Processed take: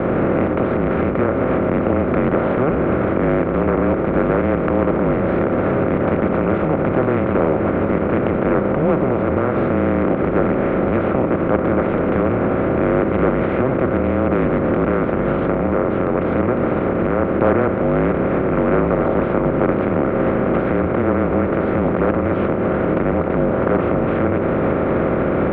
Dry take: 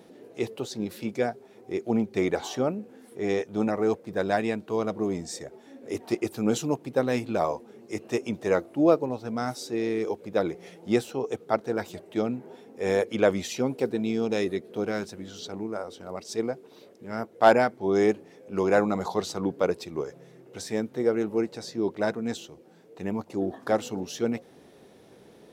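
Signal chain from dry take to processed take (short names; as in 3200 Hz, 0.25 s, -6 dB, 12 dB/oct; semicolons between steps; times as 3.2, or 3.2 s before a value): per-bin compression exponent 0.2; recorder AGC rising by 61 dB/s; de-hum 71.08 Hz, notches 6; mistuned SSB -140 Hz 180–2500 Hz; Doppler distortion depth 0.23 ms; gain -2.5 dB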